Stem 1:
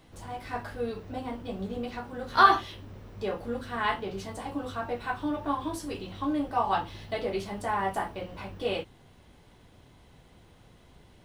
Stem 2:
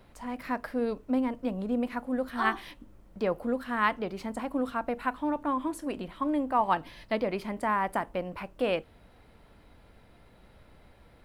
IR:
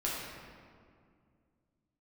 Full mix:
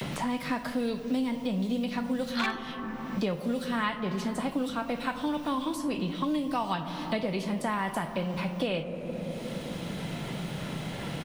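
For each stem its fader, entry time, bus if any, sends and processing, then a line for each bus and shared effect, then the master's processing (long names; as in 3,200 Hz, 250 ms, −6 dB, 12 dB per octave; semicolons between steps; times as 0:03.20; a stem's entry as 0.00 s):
+3.0 dB, 0.00 s, no send, wavefolder on the positive side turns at −13.5 dBFS; inverse Chebyshev high-pass filter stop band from 640 Hz, stop band 60 dB
−6.0 dB, 11 ms, send −10.5 dB, parametric band 160 Hz +13.5 dB 0.8 octaves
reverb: on, RT60 2.2 s, pre-delay 6 ms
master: multiband upward and downward compressor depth 100%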